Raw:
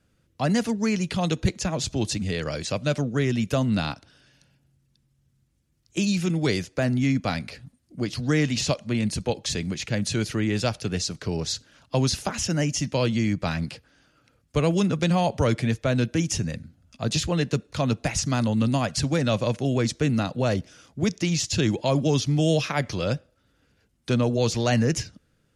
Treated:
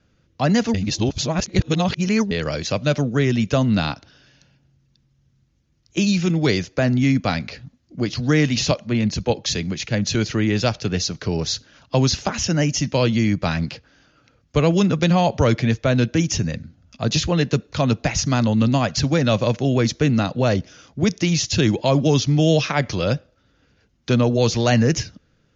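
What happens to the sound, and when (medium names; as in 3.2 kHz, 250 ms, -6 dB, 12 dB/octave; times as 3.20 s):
0.74–2.31 s: reverse
8.71–10.15 s: three bands expanded up and down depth 40%
whole clip: steep low-pass 6.8 kHz 96 dB/octave; trim +5 dB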